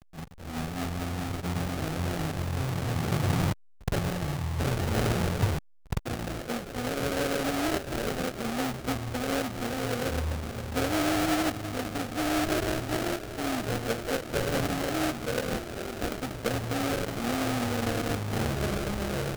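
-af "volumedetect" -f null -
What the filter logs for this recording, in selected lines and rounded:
mean_volume: -29.9 dB
max_volume: -14.3 dB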